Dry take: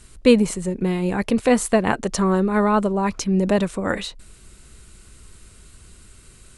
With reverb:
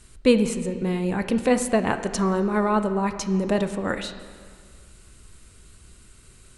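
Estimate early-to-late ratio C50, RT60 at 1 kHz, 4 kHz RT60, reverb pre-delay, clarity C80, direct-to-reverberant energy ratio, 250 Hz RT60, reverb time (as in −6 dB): 10.0 dB, 1.9 s, 1.4 s, 20 ms, 11.5 dB, 9.0 dB, 1.8 s, 1.9 s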